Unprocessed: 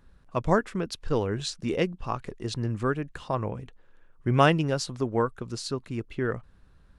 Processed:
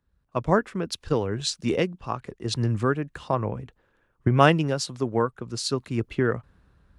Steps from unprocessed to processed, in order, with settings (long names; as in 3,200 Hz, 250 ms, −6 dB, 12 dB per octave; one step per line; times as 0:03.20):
camcorder AGC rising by 9.8 dB per second
high-pass filter 48 Hz
multiband upward and downward expander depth 40%